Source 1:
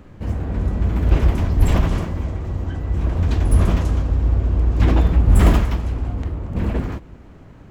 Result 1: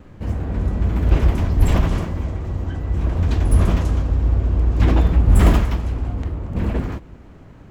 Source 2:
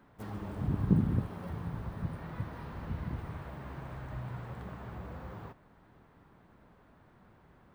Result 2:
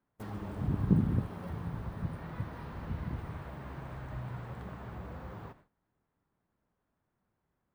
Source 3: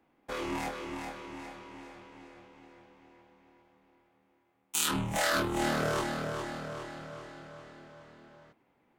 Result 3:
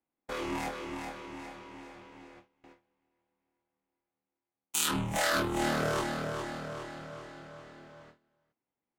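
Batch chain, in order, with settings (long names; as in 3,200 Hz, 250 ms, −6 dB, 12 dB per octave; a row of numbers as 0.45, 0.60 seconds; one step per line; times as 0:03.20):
noise gate with hold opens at −44 dBFS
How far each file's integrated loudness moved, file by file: 0.0, 0.0, 0.0 LU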